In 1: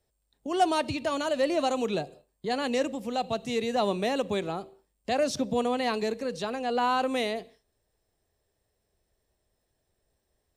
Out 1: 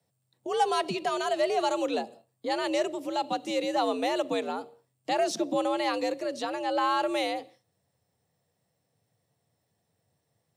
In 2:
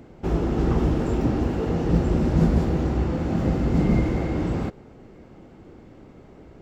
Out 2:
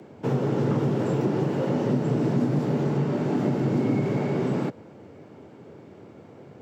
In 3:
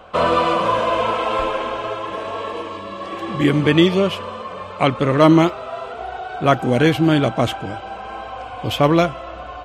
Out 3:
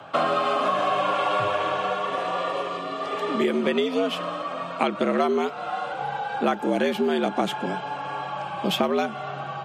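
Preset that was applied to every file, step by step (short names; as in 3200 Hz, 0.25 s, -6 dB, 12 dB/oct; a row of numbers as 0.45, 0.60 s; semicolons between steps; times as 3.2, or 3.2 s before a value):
compressor 12:1, threshold -19 dBFS; frequency shift +79 Hz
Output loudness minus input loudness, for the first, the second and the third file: 0.0, -1.5, -7.0 LU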